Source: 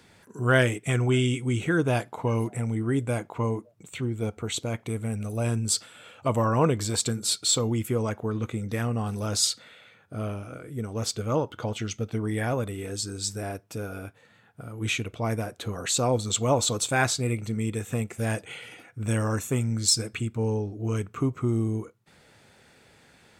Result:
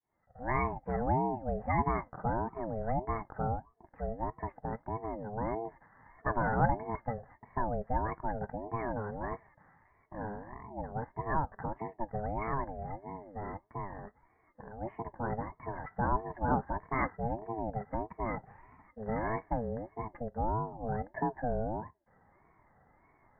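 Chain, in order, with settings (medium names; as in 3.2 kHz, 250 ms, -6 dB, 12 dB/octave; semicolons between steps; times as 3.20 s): fade-in on the opening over 0.82 s; rippled Chebyshev low-pass 1.7 kHz, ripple 9 dB; ring modulator with a swept carrier 440 Hz, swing 30%, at 1.6 Hz; trim +1 dB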